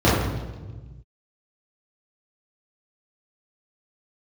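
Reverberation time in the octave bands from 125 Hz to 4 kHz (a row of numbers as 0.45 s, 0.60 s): 2.1 s, 1.7 s, 1.4 s, 1.1 s, 1.0 s, 1.0 s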